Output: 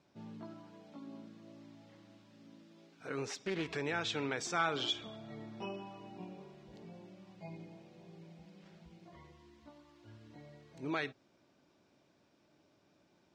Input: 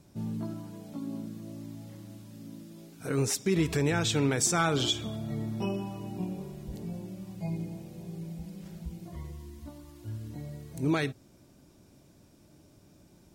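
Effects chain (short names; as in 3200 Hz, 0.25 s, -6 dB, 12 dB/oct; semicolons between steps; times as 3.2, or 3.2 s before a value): HPF 830 Hz 6 dB/oct; air absorption 180 m; 3.25–3.68 Doppler distortion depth 0.24 ms; gain -1.5 dB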